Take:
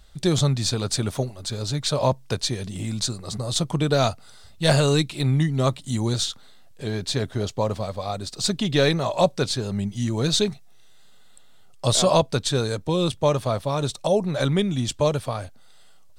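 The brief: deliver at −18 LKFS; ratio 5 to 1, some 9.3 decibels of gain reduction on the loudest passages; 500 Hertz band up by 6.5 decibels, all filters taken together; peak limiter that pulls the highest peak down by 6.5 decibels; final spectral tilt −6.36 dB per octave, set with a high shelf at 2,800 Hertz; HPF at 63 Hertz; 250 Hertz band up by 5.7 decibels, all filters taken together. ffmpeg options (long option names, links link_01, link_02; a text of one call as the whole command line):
ffmpeg -i in.wav -af "highpass=63,equalizer=frequency=250:width_type=o:gain=6.5,equalizer=frequency=500:width_type=o:gain=6.5,highshelf=frequency=2800:gain=-6,acompressor=threshold=-17dB:ratio=5,volume=7.5dB,alimiter=limit=-6.5dB:level=0:latency=1" out.wav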